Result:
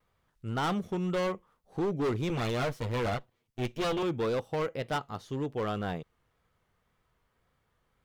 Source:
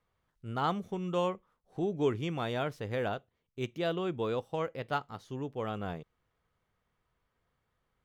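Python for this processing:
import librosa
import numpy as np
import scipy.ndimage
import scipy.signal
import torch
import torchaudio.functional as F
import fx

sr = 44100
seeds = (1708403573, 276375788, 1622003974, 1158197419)

y = fx.lower_of_two(x, sr, delay_ms=8.4, at=(2.29, 4.03))
y = fx.vibrato(y, sr, rate_hz=1.9, depth_cents=57.0)
y = np.clip(10.0 ** (31.0 / 20.0) * y, -1.0, 1.0) / 10.0 ** (31.0 / 20.0)
y = y * 10.0 ** (5.0 / 20.0)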